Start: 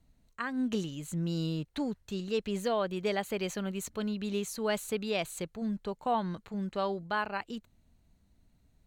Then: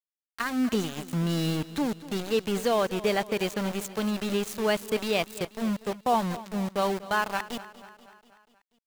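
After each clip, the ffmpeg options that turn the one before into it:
ffmpeg -i in.wav -af "aeval=exprs='val(0)*gte(abs(val(0)),0.015)':channel_layout=same,aecho=1:1:242|484|726|968|1210:0.141|0.0819|0.0475|0.0276|0.016,volume=5.5dB" out.wav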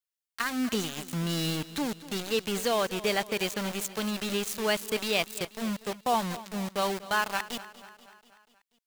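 ffmpeg -i in.wav -af "tiltshelf=frequency=1500:gain=-4" out.wav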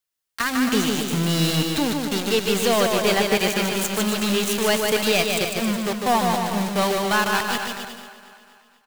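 ffmpeg -i in.wav -filter_complex "[0:a]aeval=exprs='clip(val(0),-1,0.0596)':channel_layout=same,asplit=2[link_01][link_02];[link_02]aecho=0:1:150|270|366|442.8|504.2:0.631|0.398|0.251|0.158|0.1[link_03];[link_01][link_03]amix=inputs=2:normalize=0,volume=7.5dB" out.wav

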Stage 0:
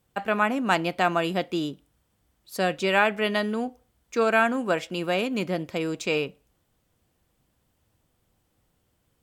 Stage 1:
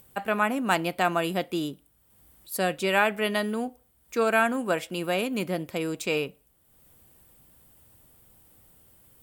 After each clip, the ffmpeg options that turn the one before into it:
ffmpeg -i in.wav -af "aexciter=amount=3.9:drive=4.3:freq=8400,acompressor=mode=upward:threshold=-45dB:ratio=2.5,volume=-1.5dB" out.wav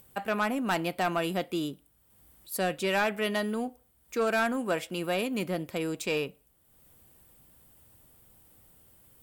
ffmpeg -i in.wav -af "asoftclip=type=tanh:threshold=-18dB,volume=-1.5dB" out.wav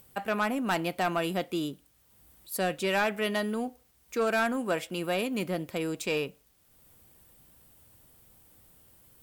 ffmpeg -i in.wav -af "acrusher=bits=10:mix=0:aa=0.000001" out.wav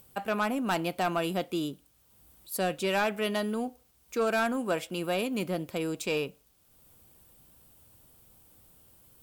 ffmpeg -i in.wav -af "equalizer=frequency=1900:width_type=o:width=0.42:gain=-4.5" out.wav

